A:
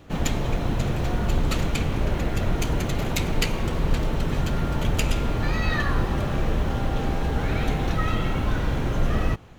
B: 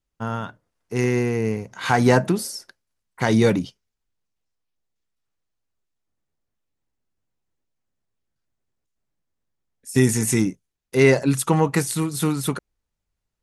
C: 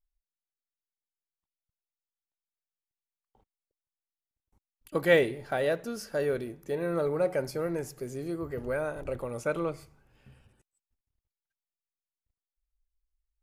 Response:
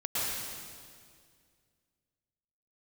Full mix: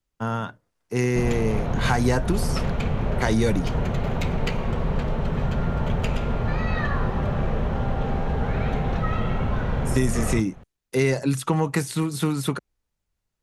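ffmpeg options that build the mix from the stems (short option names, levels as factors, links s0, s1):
-filter_complex "[0:a]lowpass=f=1200:p=1,equalizer=f=310:t=o:w=0.28:g=-14,adelay=1050,volume=1.41[s0];[1:a]volume=1.12[s1];[s0][s1]amix=inputs=2:normalize=0,acrossover=split=120|4600[s2][s3][s4];[s2]acompressor=threshold=0.0708:ratio=4[s5];[s3]acompressor=threshold=0.1:ratio=4[s6];[s4]acompressor=threshold=0.0141:ratio=4[s7];[s5][s6][s7]amix=inputs=3:normalize=0"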